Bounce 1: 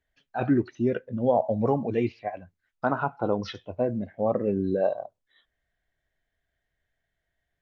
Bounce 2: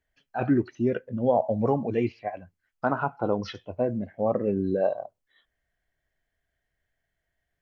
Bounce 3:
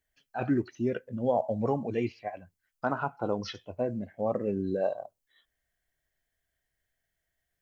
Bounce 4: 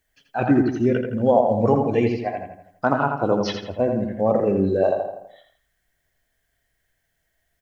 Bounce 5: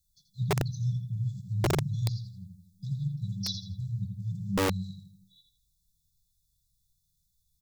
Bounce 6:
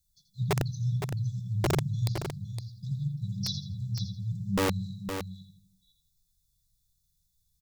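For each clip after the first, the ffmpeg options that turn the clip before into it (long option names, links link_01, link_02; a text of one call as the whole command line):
ffmpeg -i in.wav -af "bandreject=frequency=3700:width=9.8" out.wav
ffmpeg -i in.wav -af "highshelf=frequency=4500:gain=11.5,volume=-4.5dB" out.wav
ffmpeg -i in.wav -filter_complex "[0:a]asplit=2[link_01][link_02];[link_02]adelay=83,lowpass=frequency=3300:poles=1,volume=-4.5dB,asplit=2[link_03][link_04];[link_04]adelay=83,lowpass=frequency=3300:poles=1,volume=0.49,asplit=2[link_05][link_06];[link_06]adelay=83,lowpass=frequency=3300:poles=1,volume=0.49,asplit=2[link_07][link_08];[link_08]adelay=83,lowpass=frequency=3300:poles=1,volume=0.49,asplit=2[link_09][link_10];[link_10]adelay=83,lowpass=frequency=3300:poles=1,volume=0.49,asplit=2[link_11][link_12];[link_12]adelay=83,lowpass=frequency=3300:poles=1,volume=0.49[link_13];[link_01][link_03][link_05][link_07][link_09][link_11][link_13]amix=inputs=7:normalize=0,volume=9dB" out.wav
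ffmpeg -i in.wav -af "afftfilt=real='re*(1-between(b*sr/4096,200,3400))':imag='im*(1-between(b*sr/4096,200,3400))':win_size=4096:overlap=0.75,aeval=exprs='(mod(11.2*val(0)+1,2)-1)/11.2':channel_layout=same" out.wav
ffmpeg -i in.wav -af "aecho=1:1:513:0.398" out.wav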